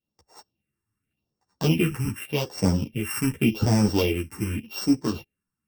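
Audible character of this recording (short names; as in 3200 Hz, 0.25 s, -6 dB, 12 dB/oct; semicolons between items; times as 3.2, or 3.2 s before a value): a buzz of ramps at a fixed pitch in blocks of 16 samples; phasing stages 4, 0.86 Hz, lowest notch 570–2900 Hz; random-step tremolo; a shimmering, thickened sound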